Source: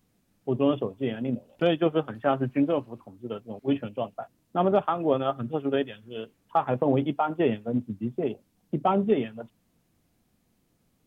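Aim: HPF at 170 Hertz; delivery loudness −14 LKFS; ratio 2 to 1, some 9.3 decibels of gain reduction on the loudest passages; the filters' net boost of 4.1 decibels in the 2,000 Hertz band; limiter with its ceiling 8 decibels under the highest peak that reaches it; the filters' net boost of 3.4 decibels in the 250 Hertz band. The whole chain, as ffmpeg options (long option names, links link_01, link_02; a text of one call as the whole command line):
ffmpeg -i in.wav -af "highpass=170,equalizer=frequency=250:width_type=o:gain=5,equalizer=frequency=2000:width_type=o:gain=5.5,acompressor=threshold=-33dB:ratio=2,volume=21.5dB,alimiter=limit=-2dB:level=0:latency=1" out.wav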